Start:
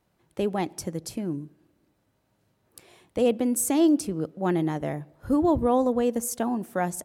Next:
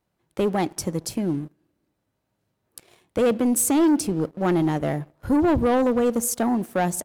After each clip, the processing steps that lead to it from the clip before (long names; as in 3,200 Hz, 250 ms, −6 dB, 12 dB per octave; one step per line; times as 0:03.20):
leveller curve on the samples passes 2
level −1.5 dB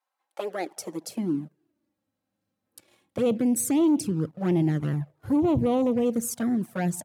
flanger swept by the level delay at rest 3.8 ms, full sweep at −16.5 dBFS
high-pass filter sweep 940 Hz → 120 Hz, 0:00.15–0:01.87
level −3.5 dB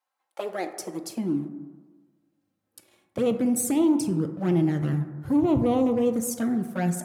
dense smooth reverb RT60 1.4 s, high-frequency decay 0.3×, DRR 7.5 dB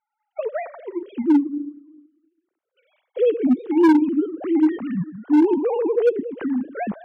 three sine waves on the formant tracks
hard clipping −17 dBFS, distortion −8 dB
level +6.5 dB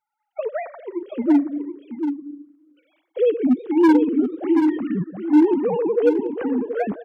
single-tap delay 729 ms −8 dB